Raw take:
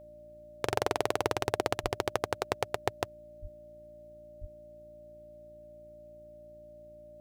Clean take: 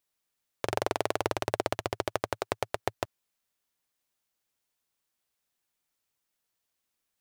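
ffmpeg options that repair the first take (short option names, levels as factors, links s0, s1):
-filter_complex "[0:a]bandreject=f=57.1:t=h:w=4,bandreject=f=114.2:t=h:w=4,bandreject=f=171.3:t=h:w=4,bandreject=f=228.4:t=h:w=4,bandreject=f=285.5:t=h:w=4,bandreject=f=342.6:t=h:w=4,bandreject=f=600:w=30,asplit=3[s0][s1][s2];[s0]afade=t=out:st=1.82:d=0.02[s3];[s1]highpass=f=140:w=0.5412,highpass=f=140:w=1.3066,afade=t=in:st=1.82:d=0.02,afade=t=out:st=1.94:d=0.02[s4];[s2]afade=t=in:st=1.94:d=0.02[s5];[s3][s4][s5]amix=inputs=3:normalize=0,asplit=3[s6][s7][s8];[s6]afade=t=out:st=3.41:d=0.02[s9];[s7]highpass=f=140:w=0.5412,highpass=f=140:w=1.3066,afade=t=in:st=3.41:d=0.02,afade=t=out:st=3.53:d=0.02[s10];[s8]afade=t=in:st=3.53:d=0.02[s11];[s9][s10][s11]amix=inputs=3:normalize=0,asplit=3[s12][s13][s14];[s12]afade=t=out:st=4.4:d=0.02[s15];[s13]highpass=f=140:w=0.5412,highpass=f=140:w=1.3066,afade=t=in:st=4.4:d=0.02,afade=t=out:st=4.52:d=0.02[s16];[s14]afade=t=in:st=4.52:d=0.02[s17];[s15][s16][s17]amix=inputs=3:normalize=0"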